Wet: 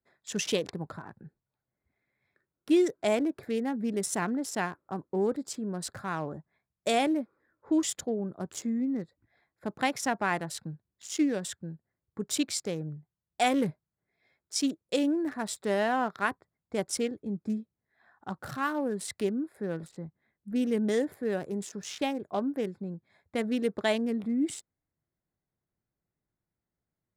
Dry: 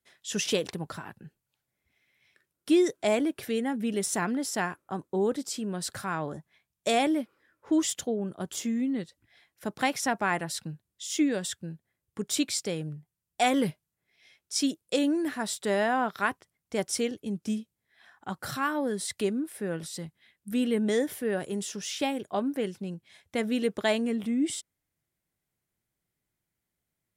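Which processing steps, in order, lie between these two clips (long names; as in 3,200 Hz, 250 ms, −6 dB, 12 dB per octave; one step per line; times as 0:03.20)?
adaptive Wiener filter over 15 samples
0:19.91–0:20.56: low-pass filter 1,500 Hz 6 dB per octave
level −1 dB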